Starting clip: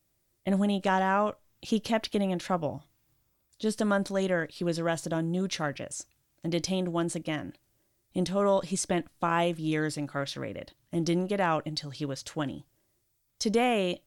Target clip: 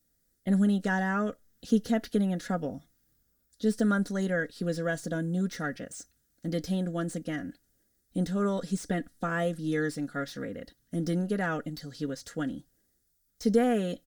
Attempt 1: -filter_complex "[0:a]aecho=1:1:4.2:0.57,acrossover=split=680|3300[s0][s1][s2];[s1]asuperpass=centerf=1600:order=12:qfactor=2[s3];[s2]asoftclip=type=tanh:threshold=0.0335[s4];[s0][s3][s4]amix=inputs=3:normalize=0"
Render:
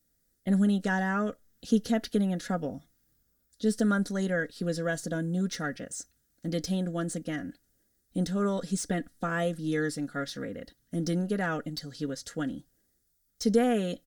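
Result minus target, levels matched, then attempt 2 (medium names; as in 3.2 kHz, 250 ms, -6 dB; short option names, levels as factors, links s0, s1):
saturation: distortion -8 dB
-filter_complex "[0:a]aecho=1:1:4.2:0.57,acrossover=split=680|3300[s0][s1][s2];[s1]asuperpass=centerf=1600:order=12:qfactor=2[s3];[s2]asoftclip=type=tanh:threshold=0.01[s4];[s0][s3][s4]amix=inputs=3:normalize=0"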